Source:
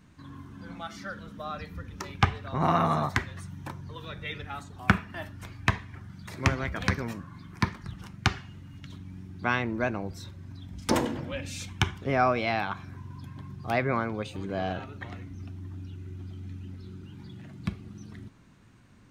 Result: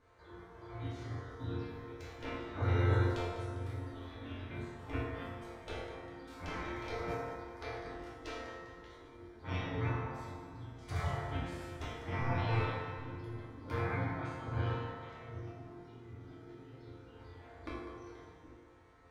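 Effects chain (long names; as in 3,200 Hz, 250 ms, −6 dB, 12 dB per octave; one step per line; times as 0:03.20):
high-pass filter 130 Hz 12 dB per octave
notch filter 2,700 Hz, Q 9.5
gate on every frequency bin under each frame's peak −15 dB weak
in parallel at −6 dB: wave folding −28 dBFS
on the sum: low-shelf EQ 180 Hz +6 dB
compressor whose output falls as the input rises −34 dBFS, ratio −1
spectral tilt −4 dB per octave
resonators tuned to a chord F2 sus4, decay 0.69 s
on a send: echo with a time of its own for lows and highs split 350 Hz, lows 769 ms, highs 200 ms, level −12 dB
on the sum: feedback delay network reverb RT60 1.8 s, low-frequency decay 0.7×, high-frequency decay 0.35×, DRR −4 dB
level +10 dB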